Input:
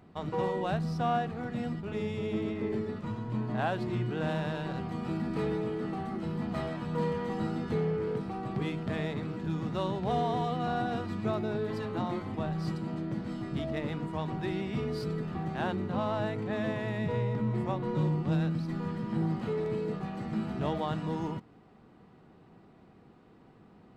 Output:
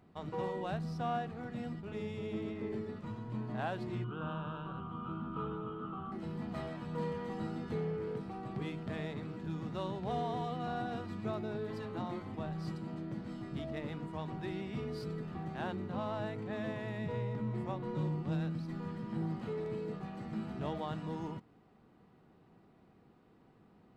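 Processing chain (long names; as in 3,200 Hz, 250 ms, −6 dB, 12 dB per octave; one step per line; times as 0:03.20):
0:04.04–0:06.12: drawn EQ curve 120 Hz 0 dB, 750 Hz −6 dB, 1,300 Hz +13 dB, 1,900 Hz −21 dB, 3,100 Hz +2 dB, 4,500 Hz −22 dB
level −6.5 dB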